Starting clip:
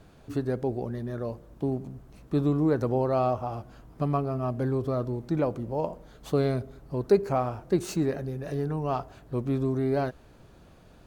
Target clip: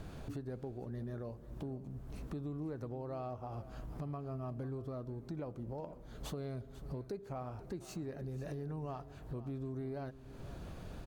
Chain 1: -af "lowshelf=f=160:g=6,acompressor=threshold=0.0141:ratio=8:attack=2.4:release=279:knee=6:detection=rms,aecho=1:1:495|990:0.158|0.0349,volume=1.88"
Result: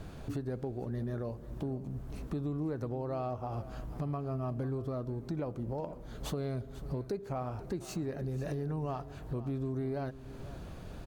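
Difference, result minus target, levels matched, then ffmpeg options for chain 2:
compression: peak gain reduction -6 dB
-af "lowshelf=f=160:g=6,acompressor=threshold=0.00631:ratio=8:attack=2.4:release=279:knee=6:detection=rms,aecho=1:1:495|990:0.158|0.0349,volume=1.88"

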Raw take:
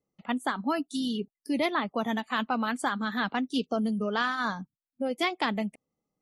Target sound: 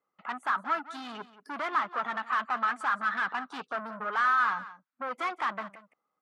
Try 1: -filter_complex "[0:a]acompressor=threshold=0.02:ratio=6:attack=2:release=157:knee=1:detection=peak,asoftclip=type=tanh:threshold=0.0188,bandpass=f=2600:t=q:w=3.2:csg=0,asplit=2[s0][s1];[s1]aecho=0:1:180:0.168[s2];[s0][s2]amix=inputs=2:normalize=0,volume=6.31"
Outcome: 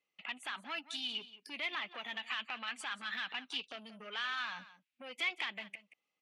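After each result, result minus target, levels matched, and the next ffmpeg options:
compression: peak gain reduction +13.5 dB; 1 kHz band -8.0 dB
-filter_complex "[0:a]asoftclip=type=tanh:threshold=0.0188,bandpass=f=2600:t=q:w=3.2:csg=0,asplit=2[s0][s1];[s1]aecho=0:1:180:0.168[s2];[s0][s2]amix=inputs=2:normalize=0,volume=6.31"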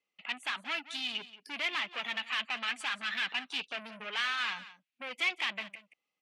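1 kHz band -9.0 dB
-filter_complex "[0:a]asoftclip=type=tanh:threshold=0.0188,bandpass=f=1300:t=q:w=3.2:csg=0,asplit=2[s0][s1];[s1]aecho=0:1:180:0.168[s2];[s0][s2]amix=inputs=2:normalize=0,volume=6.31"

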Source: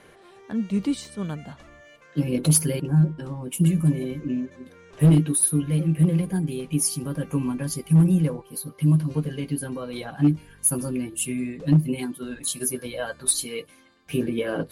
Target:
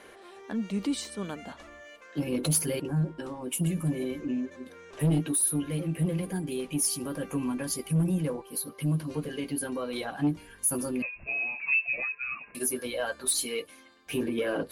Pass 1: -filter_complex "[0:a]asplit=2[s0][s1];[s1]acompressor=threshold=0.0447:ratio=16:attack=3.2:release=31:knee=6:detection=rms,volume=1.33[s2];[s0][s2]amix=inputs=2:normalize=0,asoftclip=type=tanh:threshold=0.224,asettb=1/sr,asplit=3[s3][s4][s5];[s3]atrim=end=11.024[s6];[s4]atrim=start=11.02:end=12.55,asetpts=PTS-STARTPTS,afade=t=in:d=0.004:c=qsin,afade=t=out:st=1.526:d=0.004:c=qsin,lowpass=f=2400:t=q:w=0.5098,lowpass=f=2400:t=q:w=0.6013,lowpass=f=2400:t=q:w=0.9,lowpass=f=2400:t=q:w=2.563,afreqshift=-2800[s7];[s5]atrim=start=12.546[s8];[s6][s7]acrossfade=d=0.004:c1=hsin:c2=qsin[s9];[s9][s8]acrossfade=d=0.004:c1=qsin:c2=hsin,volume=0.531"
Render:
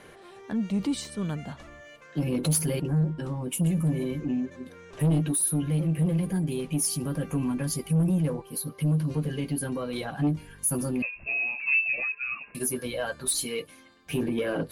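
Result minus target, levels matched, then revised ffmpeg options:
125 Hz band +2.5 dB
-filter_complex "[0:a]asplit=2[s0][s1];[s1]acompressor=threshold=0.0447:ratio=16:attack=3.2:release=31:knee=6:detection=rms,highpass=f=140:w=0.5412,highpass=f=140:w=1.3066,volume=1.33[s2];[s0][s2]amix=inputs=2:normalize=0,asoftclip=type=tanh:threshold=0.224,asettb=1/sr,asplit=3[s3][s4][s5];[s3]atrim=end=11.024[s6];[s4]atrim=start=11.02:end=12.55,asetpts=PTS-STARTPTS,afade=t=in:d=0.004:c=qsin,afade=t=out:st=1.526:d=0.004:c=qsin,lowpass=f=2400:t=q:w=0.5098,lowpass=f=2400:t=q:w=0.6013,lowpass=f=2400:t=q:w=0.9,lowpass=f=2400:t=q:w=2.563,afreqshift=-2800[s7];[s5]atrim=start=12.546[s8];[s6][s7]acrossfade=d=0.004:c1=hsin:c2=qsin[s9];[s9][s8]acrossfade=d=0.004:c1=qsin:c2=hsin,volume=0.531"

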